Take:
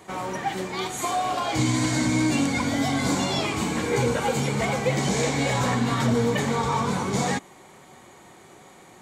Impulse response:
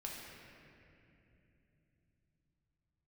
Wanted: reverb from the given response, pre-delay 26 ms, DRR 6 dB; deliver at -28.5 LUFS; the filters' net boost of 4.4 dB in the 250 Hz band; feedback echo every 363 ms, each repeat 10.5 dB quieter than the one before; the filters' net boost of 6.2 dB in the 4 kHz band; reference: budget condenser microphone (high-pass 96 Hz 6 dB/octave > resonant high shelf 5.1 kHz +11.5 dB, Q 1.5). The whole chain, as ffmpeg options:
-filter_complex "[0:a]equalizer=f=250:t=o:g=6,equalizer=f=4000:t=o:g=7,aecho=1:1:363|726|1089:0.299|0.0896|0.0269,asplit=2[s0][s1];[1:a]atrim=start_sample=2205,adelay=26[s2];[s1][s2]afir=irnorm=-1:irlink=0,volume=0.562[s3];[s0][s3]amix=inputs=2:normalize=0,highpass=f=96:p=1,highshelf=f=5100:t=q:w=1.5:g=11.5,volume=0.282"

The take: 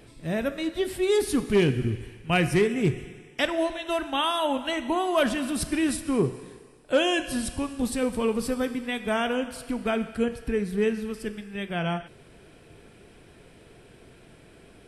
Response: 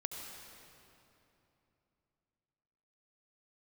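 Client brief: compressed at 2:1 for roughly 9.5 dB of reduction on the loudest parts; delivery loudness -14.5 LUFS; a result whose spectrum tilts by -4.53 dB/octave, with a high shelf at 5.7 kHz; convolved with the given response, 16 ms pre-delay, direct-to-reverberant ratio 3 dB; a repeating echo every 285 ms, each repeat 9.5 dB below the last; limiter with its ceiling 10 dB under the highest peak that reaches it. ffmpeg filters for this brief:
-filter_complex "[0:a]highshelf=f=5700:g=4.5,acompressor=threshold=0.0178:ratio=2,alimiter=level_in=1.68:limit=0.0631:level=0:latency=1,volume=0.596,aecho=1:1:285|570|855|1140:0.335|0.111|0.0365|0.012,asplit=2[s0][s1];[1:a]atrim=start_sample=2205,adelay=16[s2];[s1][s2]afir=irnorm=-1:irlink=0,volume=0.708[s3];[s0][s3]amix=inputs=2:normalize=0,volume=11.2"

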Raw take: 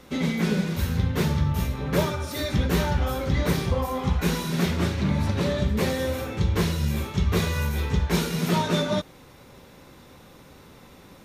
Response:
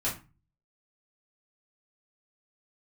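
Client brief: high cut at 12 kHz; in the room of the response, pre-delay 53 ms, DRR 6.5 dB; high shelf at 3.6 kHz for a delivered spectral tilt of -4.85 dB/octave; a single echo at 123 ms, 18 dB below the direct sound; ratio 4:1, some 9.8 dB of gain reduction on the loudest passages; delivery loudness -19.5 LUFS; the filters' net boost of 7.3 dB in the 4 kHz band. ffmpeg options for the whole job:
-filter_complex "[0:a]lowpass=12000,highshelf=f=3600:g=6,equalizer=f=4000:t=o:g=5,acompressor=threshold=0.0316:ratio=4,aecho=1:1:123:0.126,asplit=2[s0][s1];[1:a]atrim=start_sample=2205,adelay=53[s2];[s1][s2]afir=irnorm=-1:irlink=0,volume=0.224[s3];[s0][s3]amix=inputs=2:normalize=0,volume=3.76"

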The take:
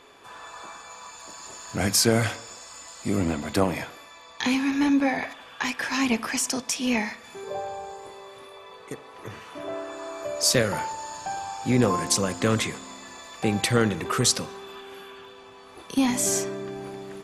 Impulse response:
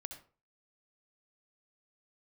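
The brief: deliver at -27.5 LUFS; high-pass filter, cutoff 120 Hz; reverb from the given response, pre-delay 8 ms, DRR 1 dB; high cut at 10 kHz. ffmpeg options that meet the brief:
-filter_complex "[0:a]highpass=120,lowpass=10000,asplit=2[s0][s1];[1:a]atrim=start_sample=2205,adelay=8[s2];[s1][s2]afir=irnorm=-1:irlink=0,volume=1.33[s3];[s0][s3]amix=inputs=2:normalize=0,volume=0.596"

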